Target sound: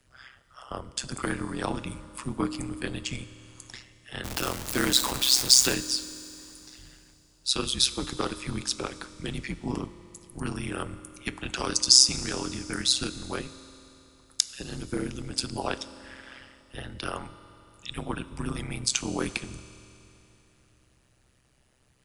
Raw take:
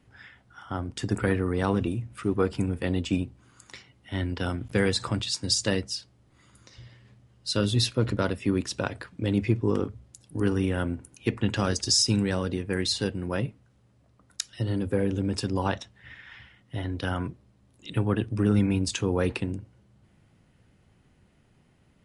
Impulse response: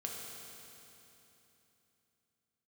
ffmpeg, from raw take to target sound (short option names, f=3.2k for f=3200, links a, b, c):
-filter_complex "[0:a]asettb=1/sr,asplit=3[a][b][c];[a]atrim=end=4.244[d];[b]atrim=start=4.24:end=5.74,asetpts=PTS-STARTPTS,afade=t=in:d=0.004:c=qsin,afade=t=out:st=1.496:d=0.004:c=qsin,aeval=exprs='val(0)+0.5*0.0473*sgn(val(0))':c=same[e];[c]atrim=start=5.736[f];[d][e]acrossfade=d=0.004:c1=hsin:c2=qsin[g];[g][f]acrossfade=d=0.004:c1=qsin:c2=hsin,bass=f=250:g=-5,treble=f=4k:g=9,acrossover=split=310|1400[h][i][j];[h]acompressor=threshold=-43dB:ratio=4[k];[k][i][j]amix=inputs=3:normalize=0,tremolo=f=130:d=0.947,asplit=2[l][m];[1:a]atrim=start_sample=2205[n];[m][n]afir=irnorm=-1:irlink=0,volume=-9.5dB[o];[l][o]amix=inputs=2:normalize=0,afreqshift=-160,volume=1dB"